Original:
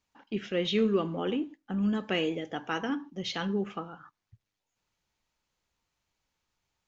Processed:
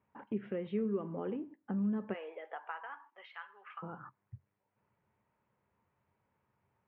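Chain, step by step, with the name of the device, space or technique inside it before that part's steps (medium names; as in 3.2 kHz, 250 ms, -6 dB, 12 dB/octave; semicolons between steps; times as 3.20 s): 2.13–3.82 s: high-pass 540 Hz -> 1.4 kHz 24 dB/octave; bass amplifier (compression 3:1, threshold -47 dBFS, peak gain reduction 18.5 dB; cabinet simulation 88–2100 Hz, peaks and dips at 90 Hz +9 dB, 130 Hz +10 dB, 210 Hz +8 dB, 410 Hz +7 dB, 580 Hz +5 dB, 970 Hz +6 dB); trim +2 dB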